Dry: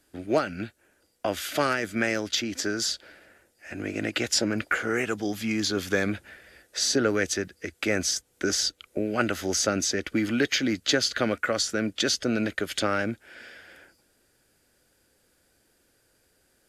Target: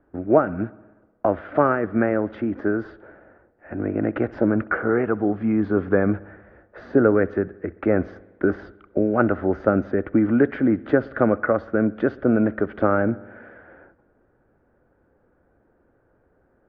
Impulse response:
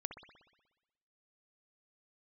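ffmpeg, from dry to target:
-filter_complex "[0:a]lowpass=f=1300:w=0.5412,lowpass=f=1300:w=1.3066,asplit=2[s0][s1];[1:a]atrim=start_sample=2205[s2];[s1][s2]afir=irnorm=-1:irlink=0,volume=0.316[s3];[s0][s3]amix=inputs=2:normalize=0,volume=2"

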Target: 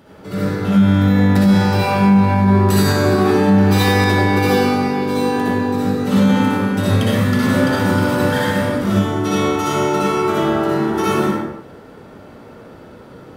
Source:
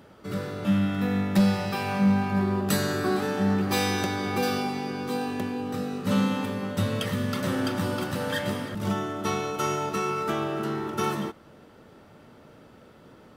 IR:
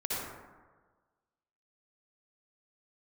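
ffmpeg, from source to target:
-filter_complex "[1:a]atrim=start_sample=2205,afade=t=out:st=0.37:d=0.01,atrim=end_sample=16758[s0];[0:a][s0]afir=irnorm=-1:irlink=0,alimiter=level_in=2.99:limit=0.891:release=50:level=0:latency=1,volume=0.631"

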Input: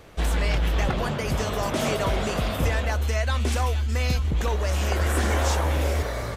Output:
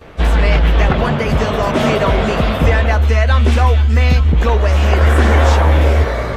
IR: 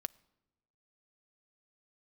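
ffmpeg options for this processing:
-filter_complex "[0:a]asplit=2[s0][s1];[1:a]atrim=start_sample=2205,lowpass=3200,adelay=13[s2];[s1][s2]afir=irnorm=-1:irlink=0,volume=5.96[s3];[s0][s3]amix=inputs=2:normalize=0,volume=0.708"

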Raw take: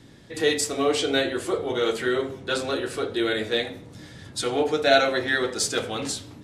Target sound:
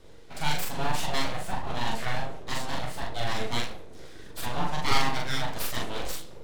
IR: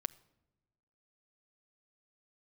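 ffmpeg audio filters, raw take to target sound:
-filter_complex "[0:a]equalizer=f=220:t=o:w=0.4:g=12,aeval=exprs='abs(val(0))':c=same,asplit=2[s0][s1];[1:a]atrim=start_sample=2205,atrim=end_sample=3528,adelay=41[s2];[s1][s2]afir=irnorm=-1:irlink=0,volume=0.841[s3];[s0][s3]amix=inputs=2:normalize=0,volume=0.531"

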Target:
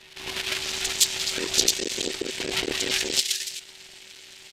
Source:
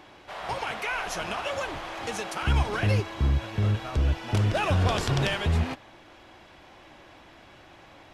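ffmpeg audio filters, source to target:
-filter_complex "[0:a]highshelf=f=10000:g=8,bandreject=f=50:t=h:w=6,bandreject=f=100:t=h:w=6,bandreject=f=150:t=h:w=6,bandreject=f=200:t=h:w=6,bandreject=f=250:t=h:w=6,bandreject=f=300:t=h:w=6,bandreject=f=350:t=h:w=6,bandreject=f=400:t=h:w=6,asplit=2[s0][s1];[s1]alimiter=limit=0.075:level=0:latency=1:release=84,volume=1.12[s2];[s0][s2]amix=inputs=2:normalize=0,atempo=1.8,afftfilt=real='hypot(re,im)*cos(2*PI*random(0))':imag='hypot(re,im)*sin(2*PI*random(1))':win_size=512:overlap=0.75,acrossover=split=4100[s3][s4];[s4]adelay=390[s5];[s3][s5]amix=inputs=2:normalize=0,aeval=exprs='max(val(0),0)':c=same,asetrate=29433,aresample=44100,atempo=1.49831,aexciter=amount=13:drive=8.5:freq=2300,aeval=exprs='val(0)*sin(2*PI*380*n/s)':c=same"

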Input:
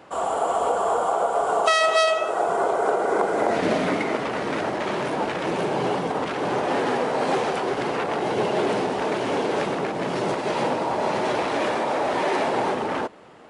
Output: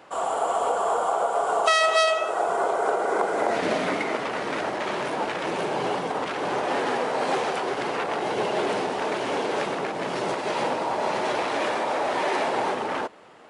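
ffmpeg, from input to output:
-af "lowshelf=f=350:g=-8"

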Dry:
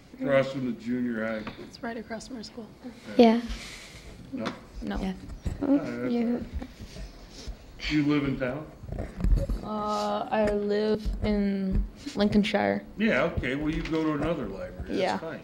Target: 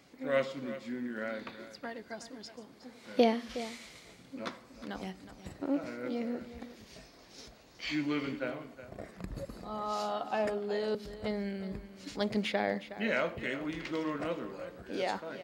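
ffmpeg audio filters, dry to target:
-filter_complex "[0:a]highpass=f=330:p=1,asplit=2[s0][s1];[s1]aecho=0:1:366:0.211[s2];[s0][s2]amix=inputs=2:normalize=0,volume=0.562"

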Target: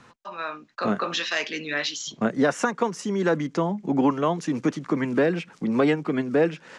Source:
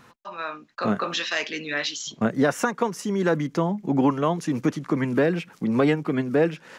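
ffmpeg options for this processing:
-filter_complex "[0:a]lowpass=f=8900:w=0.5412,lowpass=f=8900:w=1.3066,acrossover=split=150[s0][s1];[s0]acompressor=threshold=0.00631:ratio=6[s2];[s2][s1]amix=inputs=2:normalize=0"

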